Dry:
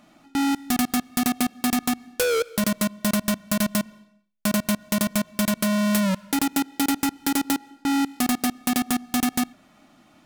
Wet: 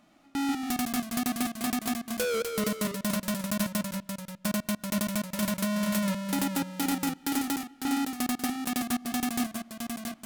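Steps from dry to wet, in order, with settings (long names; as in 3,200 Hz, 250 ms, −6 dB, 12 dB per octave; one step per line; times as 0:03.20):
delay with pitch and tempo change per echo 119 ms, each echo −1 semitone, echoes 2, each echo −6 dB
level −7 dB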